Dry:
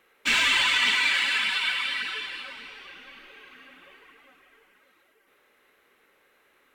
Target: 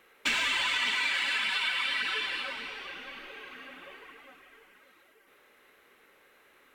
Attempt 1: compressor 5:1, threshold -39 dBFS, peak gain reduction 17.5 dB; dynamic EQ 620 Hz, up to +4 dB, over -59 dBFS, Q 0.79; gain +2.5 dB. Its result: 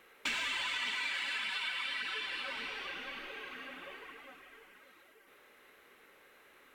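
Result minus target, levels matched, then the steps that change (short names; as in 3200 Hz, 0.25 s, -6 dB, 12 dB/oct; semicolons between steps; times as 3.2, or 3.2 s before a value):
compressor: peak gain reduction +7 dB
change: compressor 5:1, threshold -30 dBFS, peak gain reduction 10.5 dB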